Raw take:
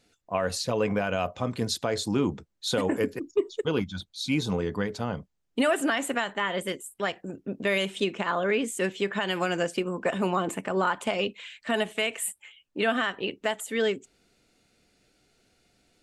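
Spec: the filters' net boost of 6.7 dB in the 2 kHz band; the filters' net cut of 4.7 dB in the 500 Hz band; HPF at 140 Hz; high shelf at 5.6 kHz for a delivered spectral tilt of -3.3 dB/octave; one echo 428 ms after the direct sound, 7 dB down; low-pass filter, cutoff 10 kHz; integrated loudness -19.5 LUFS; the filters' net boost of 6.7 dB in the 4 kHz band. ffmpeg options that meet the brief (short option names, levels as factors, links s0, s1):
-af "highpass=140,lowpass=10000,equalizer=f=500:t=o:g=-6.5,equalizer=f=2000:t=o:g=7.5,equalizer=f=4000:t=o:g=9,highshelf=f=5600:g=-8.5,aecho=1:1:428:0.447,volume=2.11"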